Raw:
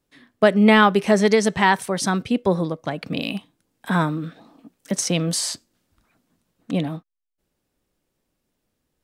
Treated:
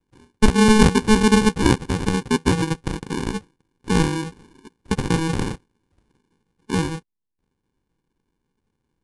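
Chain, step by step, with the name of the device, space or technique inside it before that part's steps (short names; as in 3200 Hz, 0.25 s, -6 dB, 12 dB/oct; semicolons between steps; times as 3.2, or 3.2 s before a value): crushed at another speed (playback speed 2×; sample-and-hold 34×; playback speed 0.5×); gain +1 dB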